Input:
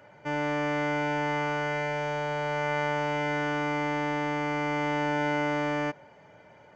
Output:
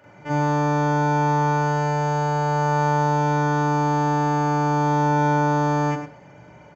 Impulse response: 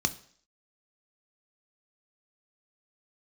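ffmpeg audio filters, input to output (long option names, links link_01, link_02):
-filter_complex "[0:a]aecho=1:1:104:0.355,asplit=2[link_01][link_02];[1:a]atrim=start_sample=2205,lowshelf=frequency=120:gain=7.5,adelay=40[link_03];[link_02][link_03]afir=irnorm=-1:irlink=0,volume=-4dB[link_04];[link_01][link_04]amix=inputs=2:normalize=0"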